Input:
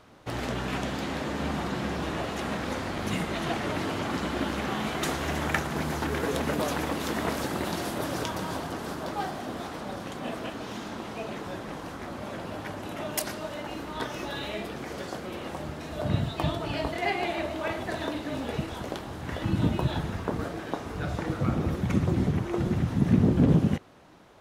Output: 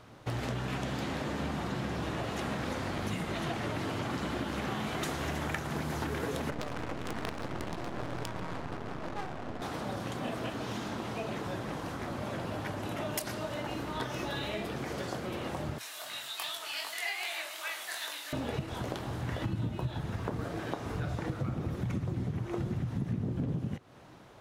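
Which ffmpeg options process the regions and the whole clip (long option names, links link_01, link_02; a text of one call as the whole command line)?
ffmpeg -i in.wav -filter_complex "[0:a]asettb=1/sr,asplit=3[link_01][link_02][link_03];[link_01]atrim=end=6.504[link_04];[link_02]atrim=start=6.5:end=9.62,asetpts=PTS-STARTPTS,afade=type=in:duration=0.004:curve=qsin,afade=type=out:start_time=3.116:duration=0.004:curve=qsin,acrusher=bits=4:dc=4:mix=0:aa=0.000001,adynamicsmooth=sensitivity=8:basefreq=720[link_05];[link_03]atrim=start=9.616[link_06];[link_04][link_05]acrossfade=duration=0.004:curve1=hsin:curve2=qsin[link_07];[link_07][link_06]acrossfade=duration=0.004:curve1=qsin:curve2=hsin,asettb=1/sr,asplit=3[link_08][link_09][link_10];[link_08]atrim=end=15.784[link_11];[link_09]atrim=start=15.78:end=18.33,asetpts=PTS-STARTPTS,afade=type=in:duration=0.004:curve=qsin,afade=type=out:start_time=2.546:duration=0.004:curve=qsin,highpass=1300,aemphasis=mode=production:type=75kf,flanger=delay=19:depth=5.6:speed=2.6[link_12];[link_10]atrim=start=18.326[link_13];[link_11][link_12]acrossfade=duration=0.004:curve1=hsin:curve2=qsin[link_14];[link_14][link_13]acrossfade=duration=0.004:curve1=qsin:curve2=hsin,equalizer=frequency=120:width=3.5:gain=8,acompressor=threshold=-31dB:ratio=6" out.wav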